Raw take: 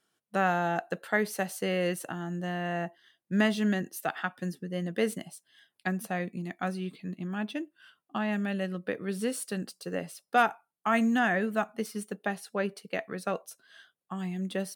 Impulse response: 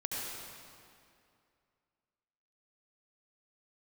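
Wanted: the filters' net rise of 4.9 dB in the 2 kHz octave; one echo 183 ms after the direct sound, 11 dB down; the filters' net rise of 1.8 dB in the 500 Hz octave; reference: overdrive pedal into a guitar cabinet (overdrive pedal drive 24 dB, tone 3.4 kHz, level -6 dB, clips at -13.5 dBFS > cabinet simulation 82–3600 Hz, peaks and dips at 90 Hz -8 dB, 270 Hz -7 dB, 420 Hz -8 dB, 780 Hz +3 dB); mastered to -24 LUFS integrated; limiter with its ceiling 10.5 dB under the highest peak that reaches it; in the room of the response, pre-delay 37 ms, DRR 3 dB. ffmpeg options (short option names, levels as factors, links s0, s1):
-filter_complex "[0:a]equalizer=f=500:t=o:g=4.5,equalizer=f=2000:t=o:g=6,alimiter=limit=0.119:level=0:latency=1,aecho=1:1:183:0.282,asplit=2[s0][s1];[1:a]atrim=start_sample=2205,adelay=37[s2];[s1][s2]afir=irnorm=-1:irlink=0,volume=0.447[s3];[s0][s3]amix=inputs=2:normalize=0,asplit=2[s4][s5];[s5]highpass=f=720:p=1,volume=15.8,asoftclip=type=tanh:threshold=0.211[s6];[s4][s6]amix=inputs=2:normalize=0,lowpass=f=3400:p=1,volume=0.501,highpass=82,equalizer=f=90:t=q:w=4:g=-8,equalizer=f=270:t=q:w=4:g=-7,equalizer=f=420:t=q:w=4:g=-8,equalizer=f=780:t=q:w=4:g=3,lowpass=f=3600:w=0.5412,lowpass=f=3600:w=1.3066,volume=0.891"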